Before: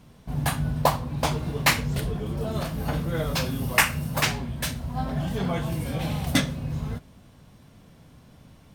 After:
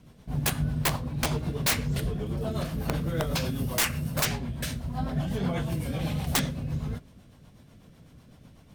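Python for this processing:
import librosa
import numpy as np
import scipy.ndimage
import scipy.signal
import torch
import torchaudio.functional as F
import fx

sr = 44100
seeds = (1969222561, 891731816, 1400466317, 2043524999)

y = fx.rotary(x, sr, hz=8.0)
y = (np.mod(10.0 ** (17.0 / 20.0) * y + 1.0, 2.0) - 1.0) / 10.0 ** (17.0 / 20.0)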